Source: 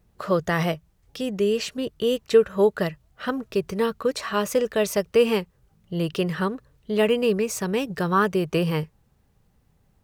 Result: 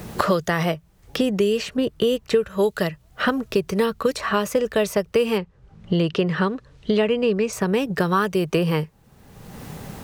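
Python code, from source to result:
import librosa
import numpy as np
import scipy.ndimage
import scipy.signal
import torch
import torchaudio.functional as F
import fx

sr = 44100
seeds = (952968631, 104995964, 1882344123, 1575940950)

y = fx.air_absorb(x, sr, metres=100.0, at=(5.38, 7.53))
y = fx.band_squash(y, sr, depth_pct=100)
y = y * librosa.db_to_amplitude(1.5)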